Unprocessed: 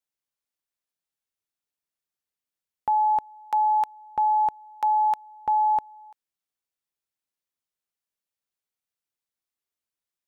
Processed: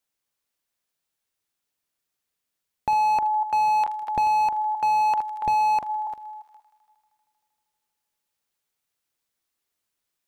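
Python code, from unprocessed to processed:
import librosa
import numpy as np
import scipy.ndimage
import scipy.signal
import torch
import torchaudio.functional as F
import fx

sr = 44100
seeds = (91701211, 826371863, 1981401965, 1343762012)

p1 = fx.reverse_delay(x, sr, ms=264, wet_db=-11.5)
p2 = p1 + 10.0 ** (-17.0 / 20.0) * np.pad(p1, (int(349 * sr / 1000.0), 0))[:len(p1)]
p3 = fx.rider(p2, sr, range_db=10, speed_s=0.5)
p4 = p2 + (p3 * librosa.db_to_amplitude(-2.0))
p5 = fx.echo_wet_highpass(p4, sr, ms=78, feedback_pct=82, hz=1600.0, wet_db=-17.5)
p6 = fx.slew_limit(p5, sr, full_power_hz=66.0)
y = p6 * librosa.db_to_amplitude(3.0)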